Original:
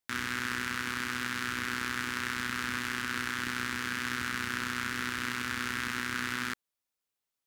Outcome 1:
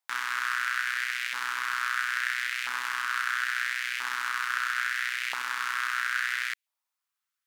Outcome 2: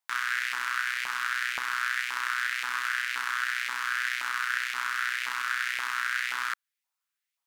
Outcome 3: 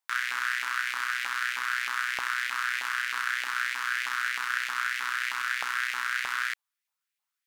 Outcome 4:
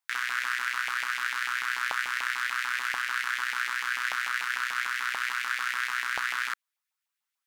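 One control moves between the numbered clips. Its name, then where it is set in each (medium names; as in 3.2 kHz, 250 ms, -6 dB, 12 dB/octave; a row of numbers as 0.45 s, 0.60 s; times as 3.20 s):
LFO high-pass, rate: 0.75 Hz, 1.9 Hz, 3.2 Hz, 6.8 Hz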